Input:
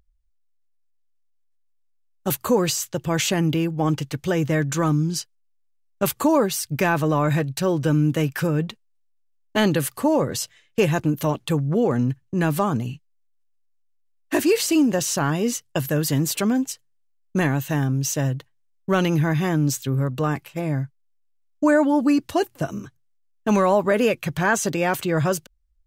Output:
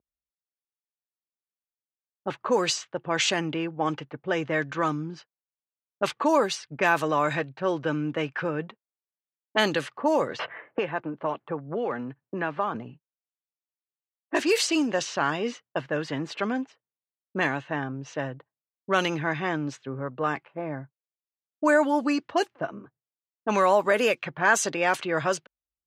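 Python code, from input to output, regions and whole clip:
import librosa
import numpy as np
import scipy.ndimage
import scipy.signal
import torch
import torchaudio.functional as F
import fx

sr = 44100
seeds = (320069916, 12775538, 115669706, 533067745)

y = fx.chain(x, sr, fx.lowpass(hz=1800.0, slope=6),
    fx.low_shelf(hz=440.0, db=-7.0),
    fx.band_squash(depth_pct=100), at=(10.39, 12.75))
y = fx.env_lowpass(y, sr, base_hz=1900.0, full_db=-16.0)
y = fx.weighting(y, sr, curve='A')
y = fx.env_lowpass(y, sr, base_hz=440.0, full_db=-18.0)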